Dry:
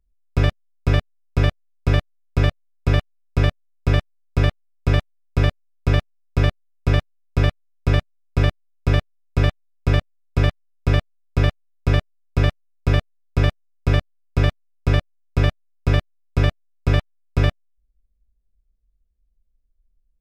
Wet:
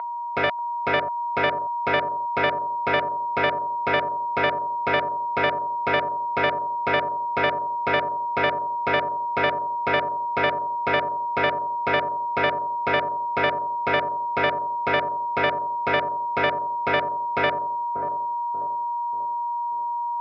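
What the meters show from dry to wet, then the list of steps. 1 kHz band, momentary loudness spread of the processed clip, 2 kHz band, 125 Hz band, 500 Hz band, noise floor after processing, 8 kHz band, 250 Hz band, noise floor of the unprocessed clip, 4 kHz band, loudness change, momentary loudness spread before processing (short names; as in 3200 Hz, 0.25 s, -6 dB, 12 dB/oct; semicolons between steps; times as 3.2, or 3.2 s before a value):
+14.5 dB, 4 LU, +6.0 dB, -20.5 dB, +4.0 dB, -27 dBFS, n/a, -7.0 dB, -67 dBFS, +0.5 dB, -1.0 dB, 6 LU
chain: whine 950 Hz -26 dBFS; speaker cabinet 380–4200 Hz, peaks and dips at 460 Hz +4 dB, 680 Hz +9 dB, 970 Hz -4 dB, 1400 Hz +10 dB, 2100 Hz +9 dB; analogue delay 0.587 s, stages 4096, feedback 43%, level -9 dB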